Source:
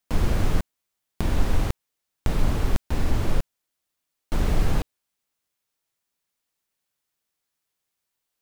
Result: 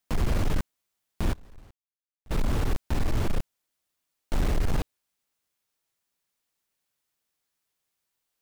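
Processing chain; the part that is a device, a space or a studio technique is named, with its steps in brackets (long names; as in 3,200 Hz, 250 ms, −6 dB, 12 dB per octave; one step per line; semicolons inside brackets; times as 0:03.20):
limiter into clipper (brickwall limiter −13.5 dBFS, peak gain reduction 5.5 dB; hard clipping −19.5 dBFS, distortion −13 dB)
0:01.33–0:02.31: noise gate −19 dBFS, range −26 dB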